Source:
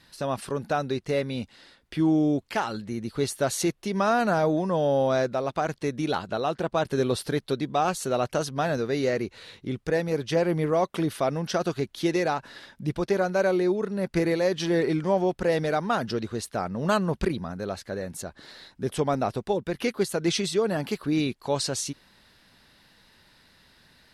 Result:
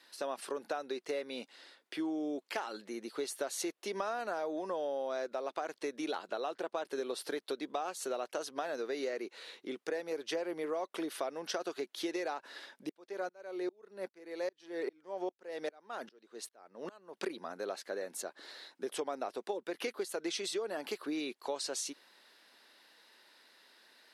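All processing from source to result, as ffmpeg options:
-filter_complex "[0:a]asettb=1/sr,asplit=3[s0][s1][s2];[s0]atrim=end=12.894[s3];[s1]atrim=start=12.89:end=17.17,asetpts=PTS-STARTPTS,afade=t=in:d=0.004:c=qsin,afade=t=out:st=4.276:d=0.004:c=qsin,highshelf=f=11000:g=-3,aeval=exprs='val(0)*pow(10,-35*if(lt(mod(-2.5*n/s,1),2*abs(-2.5)/1000),1-mod(-2.5*n/s,1)/(2*abs(-2.5)/1000),(mod(-2.5*n/s,1)-2*abs(-2.5)/1000)/(1-2*abs(-2.5)/1000))/20)':c=same[s4];[s2]atrim=start=17.166[s5];[s3][s4]acrossfade=d=0.004:c1=hsin:c2=qsin[s6];[s6][s5]acrossfade=d=0.004:c1=qsin:c2=hsin,highpass=f=320:w=0.5412,highpass=f=320:w=1.3066,acompressor=threshold=0.0316:ratio=6,volume=0.668"

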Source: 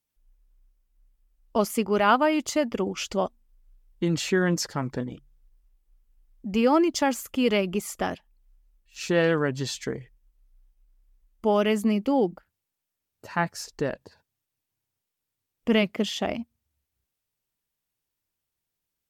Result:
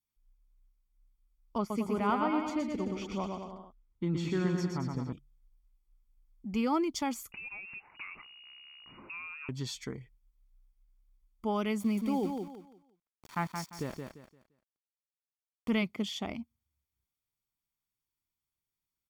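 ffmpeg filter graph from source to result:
-filter_complex "[0:a]asettb=1/sr,asplit=3[s0][s1][s2];[s0]atrim=end=1.584[s3];[s1]atrim=start=1.58:end=5.13,asetpts=PTS-STARTPTS,afade=t=in:d=0.004:c=qsin,afade=t=out:st=3.546:d=0.004:c=qsin,lowpass=f=1800:p=1,aecho=1:1:120|222|308.7|382.4|445:0.631|0.398|0.251|0.158|0.1,atrim=end_sample=156555[s4];[s2]atrim=start=5.126[s5];[s3][s4]acrossfade=d=0.004:c1=hsin:c2=qsin[s6];[s6][s5]acrossfade=d=0.004:c1=qsin:c2=hsin,asettb=1/sr,asplit=3[s7][s8][s9];[s7]atrim=end=7.324[s10];[s8]atrim=start=7.32:end=9.49,asetpts=PTS-STARTPTS,afade=t=in:d=0.004:c=qsin,afade=t=out:st=2.166:d=0.004:c=qsin,aeval=exprs='val(0)+0.5*0.0188*sgn(val(0))':c=same,acompressor=threshold=0.0251:ratio=10:attack=3.2:release=140:knee=1:detection=peak,lowpass=f=2500:t=q:w=0.5098,lowpass=f=2500:t=q:w=0.6013,lowpass=f=2500:t=q:w=0.9,lowpass=f=2500:t=q:w=2.563,afreqshift=-2900[s11];[s9]atrim=start=9.486[s12];[s10][s11]acrossfade=d=0.004:c1=hsin:c2=qsin[s13];[s13][s12]acrossfade=d=0.004:c1=qsin:c2=hsin,asettb=1/sr,asplit=3[s14][s15][s16];[s14]atrim=end=11.804[s17];[s15]atrim=start=11.8:end=15.7,asetpts=PTS-STARTPTS,afade=t=in:d=0.004:c=qsin,afade=t=out:st=3.896:d=0.004:c=qsin,aeval=exprs='val(0)*gte(abs(val(0)),0.0141)':c=same,aecho=1:1:173|346|519|692:0.531|0.149|0.0416|0.0117,atrim=end_sample=171990[s18];[s16]atrim=start=15.696[s19];[s17][s18]acrossfade=d=0.004:c1=hsin:c2=qsin[s20];[s20][s19]acrossfade=d=0.004:c1=qsin:c2=hsin,aecho=1:1:0.9:0.5,adynamicequalizer=threshold=0.0112:dfrequency=1400:dqfactor=1.2:tfrequency=1400:tqfactor=1.2:attack=5:release=100:ratio=0.375:range=3:mode=cutabove:tftype=bell,volume=0.376"

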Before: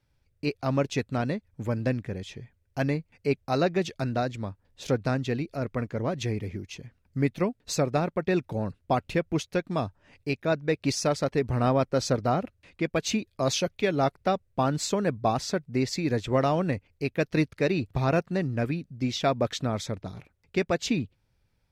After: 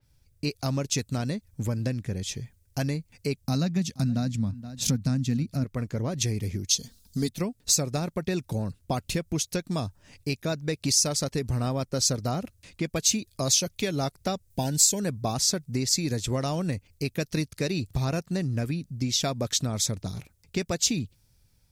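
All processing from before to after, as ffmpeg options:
-filter_complex "[0:a]asettb=1/sr,asplit=3[s0][s1][s2];[s0]atrim=end=3.444[s3];[s1]atrim=start=3.44:end=5.64,asetpts=PTS-STARTPTS,afade=t=in:d=0.004:c=qsin,afade=t=out:st=2.196:d=0.004:c=qsin,highpass=45,lowshelf=f=300:t=q:w=3:g=6.5,aecho=1:1:474:0.0841,atrim=end_sample=97020[s4];[s2]atrim=start=5.636[s5];[s3][s4]acrossfade=d=0.004:c1=hsin:c2=qsin[s6];[s6][s5]acrossfade=d=0.004:c1=qsin:c2=hsin,asettb=1/sr,asplit=3[s7][s8][s9];[s7]atrim=end=6.694[s10];[s8]atrim=start=6.69:end=7.29,asetpts=PTS-STARTPTS,afade=t=in:d=0.004:c=qsin,afade=t=out:st=0.596:d=0.004:c=qsin,highshelf=f=3000:t=q:w=3:g=7.5,aecho=1:1:4.4:0.72,atrim=end_sample=26460[s11];[s9]atrim=start=7.286[s12];[s10][s11]acrossfade=d=0.004:c1=hsin:c2=qsin[s13];[s13][s12]acrossfade=d=0.004:c1=qsin:c2=hsin,asettb=1/sr,asplit=3[s14][s15][s16];[s14]atrim=end=14.504[s17];[s15]atrim=start=14.5:end=15,asetpts=PTS-STARTPTS,afade=t=in:d=0.004:c=qsin,afade=t=out:st=0.496:d=0.004:c=qsin,asuperstop=centerf=1200:order=8:qfactor=2.6,highshelf=f=7000:g=10[s18];[s16]atrim=start=14.996[s19];[s17][s18]acrossfade=d=0.004:c1=hsin:c2=qsin[s20];[s20][s19]acrossfade=d=0.004:c1=qsin:c2=hsin,bass=f=250:g=7,treble=f=4000:g=14,acompressor=threshold=0.0501:ratio=3,adynamicequalizer=threshold=0.00631:dfrequency=3900:dqfactor=0.7:tfrequency=3900:tqfactor=0.7:attack=5:release=100:ratio=0.375:range=3.5:mode=boostabove:tftype=highshelf"

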